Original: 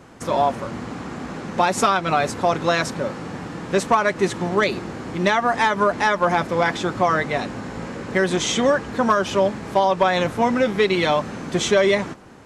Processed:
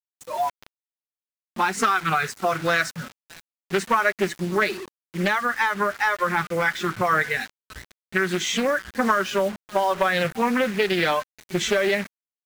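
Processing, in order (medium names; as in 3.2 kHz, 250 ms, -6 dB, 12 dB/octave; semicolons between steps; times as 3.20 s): delay 585 ms -17.5 dB; spectral noise reduction 23 dB; compression 10:1, threshold -17 dBFS, peak gain reduction 6 dB; bass shelf 260 Hz +4 dB; word length cut 6-bit, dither none; dynamic bell 1.6 kHz, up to +7 dB, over -36 dBFS, Q 1.1; level rider gain up to 11.5 dB; loudspeaker Doppler distortion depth 0.35 ms; trim -7.5 dB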